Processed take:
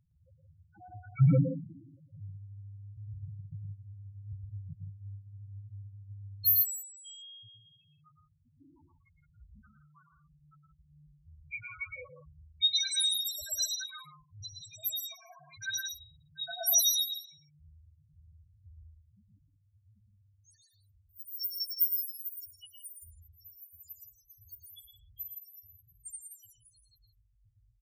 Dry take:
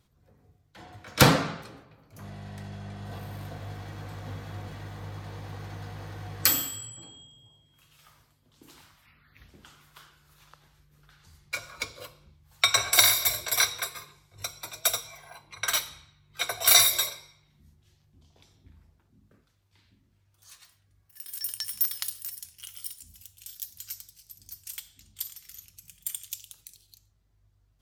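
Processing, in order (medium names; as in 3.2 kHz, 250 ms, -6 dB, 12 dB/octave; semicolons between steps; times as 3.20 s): loudest bins only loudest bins 1; loudspeakers at several distances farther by 39 m -6 dB, 57 m -10 dB; trim +7 dB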